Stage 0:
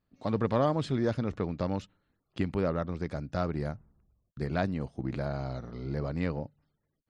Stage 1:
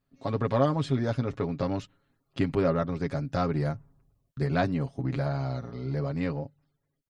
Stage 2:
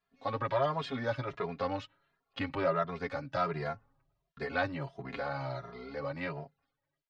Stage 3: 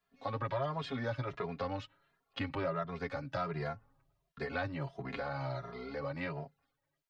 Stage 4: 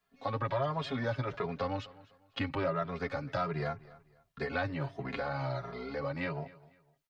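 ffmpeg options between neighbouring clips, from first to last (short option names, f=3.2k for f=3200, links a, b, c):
-af "aecho=1:1:7.3:0.65,dynaudnorm=f=200:g=17:m=3dB"
-filter_complex "[0:a]acrossover=split=570 4600:gain=0.2 1 0.1[a][b][c];[a][b][c]amix=inputs=3:normalize=0,asplit=2[d][e];[e]alimiter=level_in=1dB:limit=-24dB:level=0:latency=1:release=31,volume=-1dB,volume=-2dB[f];[d][f]amix=inputs=2:normalize=0,asplit=2[g][h];[h]adelay=2.5,afreqshift=1.4[i];[g][i]amix=inputs=2:normalize=1"
-filter_complex "[0:a]acrossover=split=160[a][b];[b]acompressor=threshold=-40dB:ratio=2[c];[a][c]amix=inputs=2:normalize=0,volume=1.5dB"
-af "aecho=1:1:251|502:0.0944|0.0283,volume=3dB"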